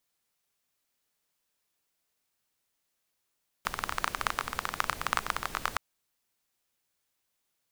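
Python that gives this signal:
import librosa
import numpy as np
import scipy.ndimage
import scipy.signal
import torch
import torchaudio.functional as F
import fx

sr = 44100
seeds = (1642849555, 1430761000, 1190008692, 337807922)

y = fx.rain(sr, seeds[0], length_s=2.12, drops_per_s=19.0, hz=1200.0, bed_db=-9.0)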